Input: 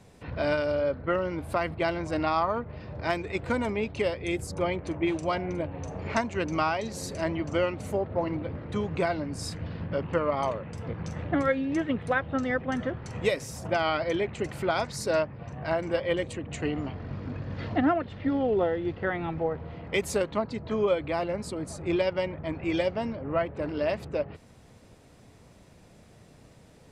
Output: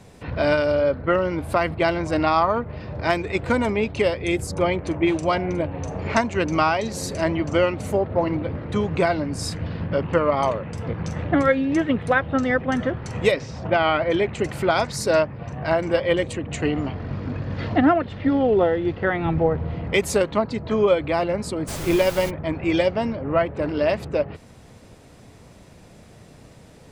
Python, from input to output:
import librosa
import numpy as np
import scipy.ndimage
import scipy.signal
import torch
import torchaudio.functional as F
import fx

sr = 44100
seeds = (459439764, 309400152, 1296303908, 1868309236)

y = fx.lowpass(x, sr, hz=fx.line((13.31, 5200.0), (14.1, 3000.0)), slope=24, at=(13.31, 14.1), fade=0.02)
y = fx.low_shelf(y, sr, hz=240.0, db=7.5, at=(19.25, 19.93))
y = fx.dmg_noise_colour(y, sr, seeds[0], colour='pink', level_db=-40.0, at=(21.67, 22.29), fade=0.02)
y = y * librosa.db_to_amplitude(7.0)